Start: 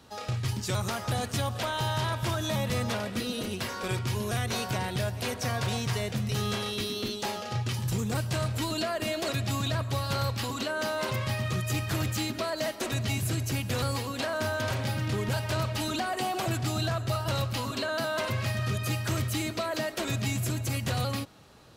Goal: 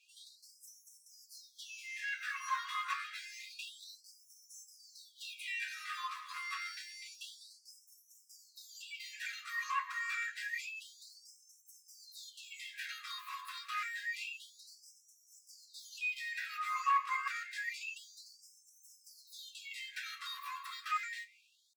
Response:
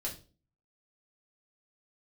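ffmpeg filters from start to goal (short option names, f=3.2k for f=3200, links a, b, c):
-filter_complex "[0:a]bandreject=f=1.8k:w=8.4,asetrate=74167,aresample=44100,atempo=0.594604,equalizer=f=370:w=5.5:g=-11,acompressor=threshold=-33dB:ratio=2.5,acrossover=split=330 3300:gain=0.0891 1 0.0891[a][b][c];[a][b][c]amix=inputs=3:normalize=0[d];[1:a]atrim=start_sample=2205,afade=t=out:st=0.38:d=0.01,atrim=end_sample=17199,asetrate=83790,aresample=44100[e];[d][e]afir=irnorm=-1:irlink=0,afftfilt=real='re*gte(b*sr/1024,980*pow(5400/980,0.5+0.5*sin(2*PI*0.28*pts/sr)))':imag='im*gte(b*sr/1024,980*pow(5400/980,0.5+0.5*sin(2*PI*0.28*pts/sr)))':win_size=1024:overlap=0.75,volume=9dB"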